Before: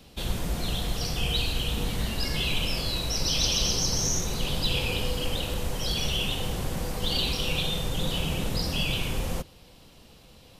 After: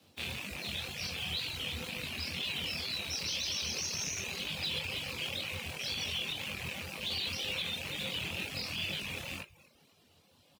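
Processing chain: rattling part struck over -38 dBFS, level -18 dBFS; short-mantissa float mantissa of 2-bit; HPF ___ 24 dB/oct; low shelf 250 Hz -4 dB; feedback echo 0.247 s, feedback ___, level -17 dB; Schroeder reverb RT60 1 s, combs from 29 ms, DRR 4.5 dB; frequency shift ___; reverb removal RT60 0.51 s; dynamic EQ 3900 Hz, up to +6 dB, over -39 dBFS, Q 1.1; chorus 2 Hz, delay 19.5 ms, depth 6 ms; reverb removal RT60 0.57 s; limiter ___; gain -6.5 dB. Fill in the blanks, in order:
51 Hz, 28%, +19 Hz, -19 dBFS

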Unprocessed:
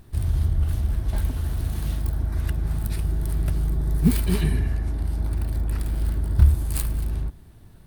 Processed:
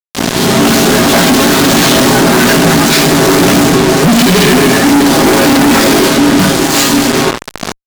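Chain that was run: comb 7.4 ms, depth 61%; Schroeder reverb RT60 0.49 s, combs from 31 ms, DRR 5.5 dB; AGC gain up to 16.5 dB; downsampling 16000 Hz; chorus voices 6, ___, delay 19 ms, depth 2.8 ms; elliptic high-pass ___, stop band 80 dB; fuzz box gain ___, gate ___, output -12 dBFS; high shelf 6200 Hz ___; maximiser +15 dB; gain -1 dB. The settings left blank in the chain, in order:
0.37 Hz, 190 Hz, 45 dB, -41 dBFS, +5.5 dB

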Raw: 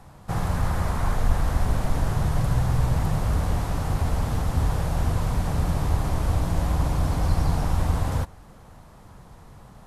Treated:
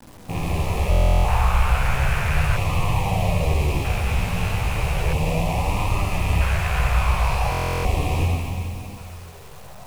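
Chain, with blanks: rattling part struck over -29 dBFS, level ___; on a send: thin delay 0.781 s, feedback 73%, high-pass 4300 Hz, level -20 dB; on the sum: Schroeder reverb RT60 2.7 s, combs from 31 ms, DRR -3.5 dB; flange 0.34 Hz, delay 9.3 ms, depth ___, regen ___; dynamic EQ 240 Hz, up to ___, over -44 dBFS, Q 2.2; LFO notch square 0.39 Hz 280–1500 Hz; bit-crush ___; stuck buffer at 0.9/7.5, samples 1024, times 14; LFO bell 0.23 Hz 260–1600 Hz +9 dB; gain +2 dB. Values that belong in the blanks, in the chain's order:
-21 dBFS, 8.5 ms, +40%, -5 dB, 8-bit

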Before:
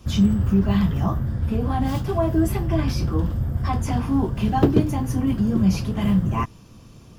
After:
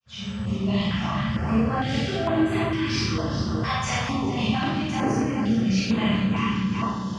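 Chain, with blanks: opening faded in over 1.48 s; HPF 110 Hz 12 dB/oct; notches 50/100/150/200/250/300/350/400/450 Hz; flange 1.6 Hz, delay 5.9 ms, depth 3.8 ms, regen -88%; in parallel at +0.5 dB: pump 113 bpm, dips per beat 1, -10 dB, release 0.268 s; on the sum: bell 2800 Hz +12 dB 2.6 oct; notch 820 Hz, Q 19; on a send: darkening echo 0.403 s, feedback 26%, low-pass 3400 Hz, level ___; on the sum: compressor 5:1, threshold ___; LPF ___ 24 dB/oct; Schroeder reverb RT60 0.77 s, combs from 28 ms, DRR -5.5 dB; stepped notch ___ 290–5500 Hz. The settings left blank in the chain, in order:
-5.5 dB, -27 dBFS, 7100 Hz, 2.2 Hz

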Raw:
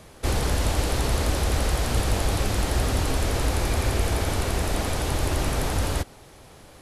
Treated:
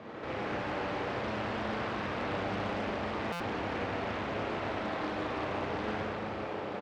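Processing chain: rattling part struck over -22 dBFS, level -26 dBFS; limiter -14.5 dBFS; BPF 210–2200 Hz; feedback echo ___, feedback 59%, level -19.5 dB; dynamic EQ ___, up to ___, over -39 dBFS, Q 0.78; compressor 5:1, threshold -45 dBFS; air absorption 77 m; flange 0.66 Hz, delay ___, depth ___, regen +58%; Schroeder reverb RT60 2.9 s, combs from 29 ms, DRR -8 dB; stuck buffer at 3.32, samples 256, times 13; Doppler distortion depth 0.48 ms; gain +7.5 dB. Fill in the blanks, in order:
0.497 s, 450 Hz, -3 dB, 8.7 ms, 1.9 ms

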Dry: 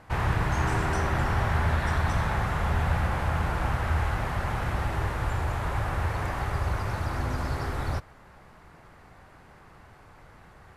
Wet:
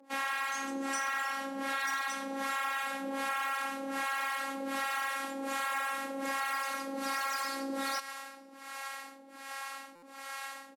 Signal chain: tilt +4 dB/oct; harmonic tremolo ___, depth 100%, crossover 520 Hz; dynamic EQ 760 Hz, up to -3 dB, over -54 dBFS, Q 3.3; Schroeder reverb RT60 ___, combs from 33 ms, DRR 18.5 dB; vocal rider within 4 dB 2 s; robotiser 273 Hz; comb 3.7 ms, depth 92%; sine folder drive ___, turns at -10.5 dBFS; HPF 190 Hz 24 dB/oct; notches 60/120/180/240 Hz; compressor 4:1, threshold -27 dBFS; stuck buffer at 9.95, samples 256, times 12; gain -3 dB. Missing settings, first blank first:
1.3 Hz, 1.1 s, 5 dB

